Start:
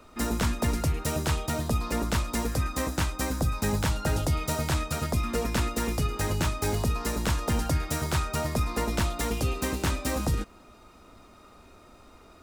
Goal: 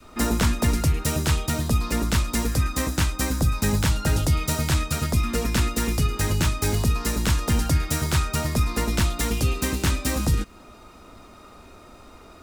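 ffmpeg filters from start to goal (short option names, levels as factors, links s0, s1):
-af "adynamicequalizer=threshold=0.00562:dfrequency=690:dqfactor=0.71:tfrequency=690:tqfactor=0.71:attack=5:release=100:ratio=0.375:range=3.5:mode=cutabove:tftype=bell,volume=2"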